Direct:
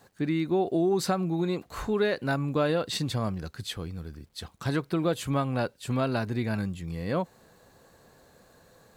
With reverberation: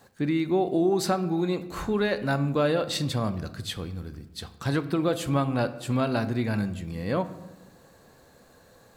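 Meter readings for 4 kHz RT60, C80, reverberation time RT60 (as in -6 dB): 0.60 s, 16.5 dB, 1.1 s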